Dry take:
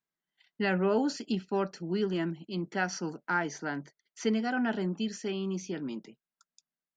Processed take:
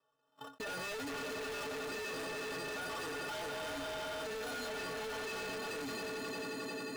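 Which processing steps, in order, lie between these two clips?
rattle on loud lows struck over -35 dBFS, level -25 dBFS; high-pass 70 Hz 24 dB/octave; echo with a slow build-up 89 ms, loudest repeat 5, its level -14.5 dB; peak limiter -26 dBFS, peak gain reduction 11 dB; sample-and-hold 20×; inharmonic resonator 130 Hz, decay 0.26 s, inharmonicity 0.03; small resonant body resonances 500/1200 Hz, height 12 dB, ringing for 60 ms; overdrive pedal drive 27 dB, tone 4.7 kHz, clips at -28.5 dBFS; wavefolder -35 dBFS; expander -51 dBFS; level flattener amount 70%; trim -3 dB

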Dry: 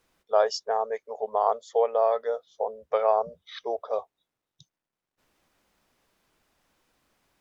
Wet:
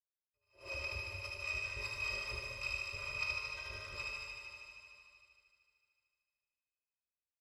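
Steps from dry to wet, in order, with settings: bit-reversed sample order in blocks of 256 samples; high-pass 82 Hz 6 dB/octave; gate -52 dBFS, range -36 dB; Bessel low-pass 1.3 kHz, order 2; hum notches 60/120 Hz; comb 1.8 ms, depth 96%; reverse; compression, threshold -43 dBFS, peak gain reduction 14 dB; reverse; pitch shift -1.5 st; harmonic tremolo 5.1 Hz, depth 100%, crossover 620 Hz; on a send: thinning echo 75 ms, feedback 80%, high-pass 430 Hz, level -3.5 dB; on the sum: plate-style reverb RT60 2.5 s, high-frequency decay 1×, DRR -1 dB; attacks held to a fixed rise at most 170 dB/s; trim +5 dB

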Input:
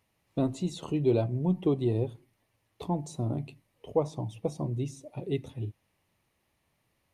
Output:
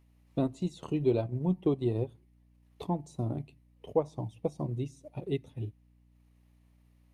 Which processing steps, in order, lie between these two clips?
transient shaper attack +2 dB, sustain -7 dB; hum 60 Hz, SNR 29 dB; trim -2.5 dB

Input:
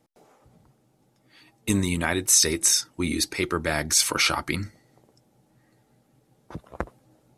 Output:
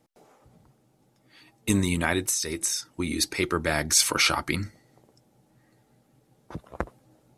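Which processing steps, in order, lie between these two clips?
2.25–3.21 s: compression 12:1, threshold -24 dBFS, peak gain reduction 11 dB

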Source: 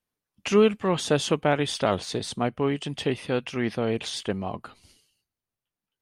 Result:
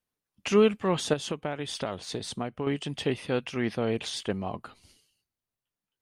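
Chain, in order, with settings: 1.13–2.67 s: compression 6:1, threshold -27 dBFS, peak gain reduction 10 dB; trim -2 dB

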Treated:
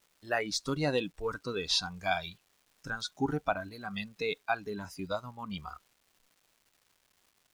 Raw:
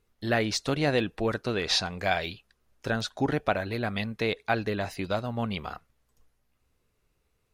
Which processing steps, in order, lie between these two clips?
spectral noise reduction 16 dB; crackle 570 per s -52 dBFS; trim -3 dB

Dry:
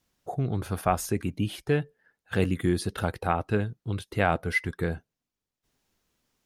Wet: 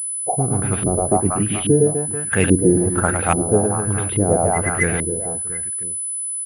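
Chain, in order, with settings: reverse bouncing-ball echo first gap 110 ms, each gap 1.3×, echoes 5; LFO low-pass saw up 1.2 Hz 300–3200 Hz; class-D stage that switches slowly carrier 10 kHz; trim +6 dB

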